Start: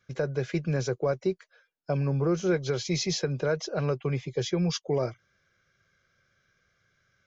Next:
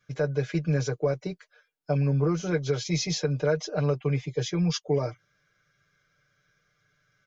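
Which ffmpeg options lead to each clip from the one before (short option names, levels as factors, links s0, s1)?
-af "aecho=1:1:6.7:0.86,volume=0.794"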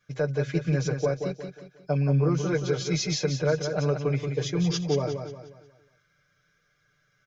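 -af "bandreject=f=60:t=h:w=6,bandreject=f=120:t=h:w=6,aecho=1:1:179|358|537|716|895:0.447|0.174|0.0679|0.0265|0.0103"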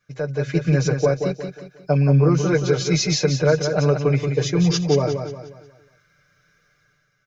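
-af "bandreject=f=3300:w=13,dynaudnorm=f=130:g=7:m=2.37"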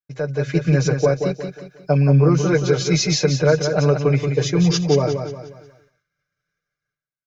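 -af "agate=range=0.0224:threshold=0.00398:ratio=3:detection=peak,volume=1.19"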